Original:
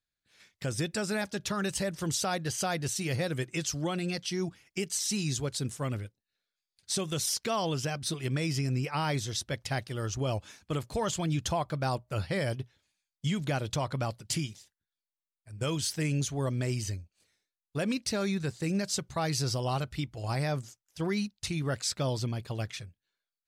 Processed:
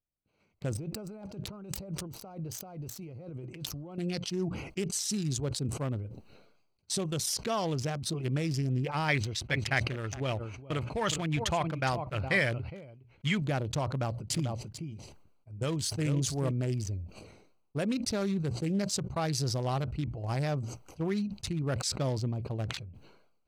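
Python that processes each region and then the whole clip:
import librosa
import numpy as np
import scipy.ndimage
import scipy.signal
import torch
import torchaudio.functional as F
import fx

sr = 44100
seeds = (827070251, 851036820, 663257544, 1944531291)

y = fx.chain(x, sr, fx.self_delay(depth_ms=0.053),
    fx.over_compress(threshold_db=-41.0, ratio=-1.0), at=(0.75, 3.98))
y = fx.chain(y, sr, fx.peak_eq(hz=2100.0, db=12.5, octaves=1.2),
    fx.echo_single(ms=413, db=-11.5),
    fx.upward_expand(threshold_db=-49.0, expansion=1.5), at=(9.08, 13.42))
y = fx.chain(y, sr, fx.quant_float(bits=8),
    fx.echo_single(ms=442, db=-7.0), at=(13.93, 16.51))
y = fx.wiener(y, sr, points=25)
y = fx.sustainer(y, sr, db_per_s=55.0)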